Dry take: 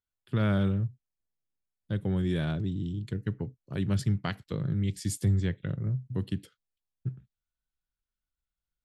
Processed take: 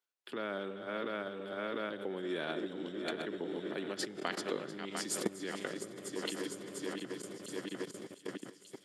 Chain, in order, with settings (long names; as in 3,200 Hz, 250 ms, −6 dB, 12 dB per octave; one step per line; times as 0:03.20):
feedback delay that plays each chunk backwards 350 ms, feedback 74%, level −8.5 dB
in parallel at +2.5 dB: downward compressor 4 to 1, threshold −41 dBFS, peak gain reduction 17 dB
on the sum: high-shelf EQ 8,300 Hz −8.5 dB
on a send at −15 dB: convolution reverb RT60 4.5 s, pre-delay 12 ms
on the sum: output level in coarse steps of 20 dB
high-pass filter 310 Hz 24 dB per octave
delay with a high-pass on its return 1,186 ms, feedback 46%, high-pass 3,500 Hz, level −11 dB
level +10.5 dB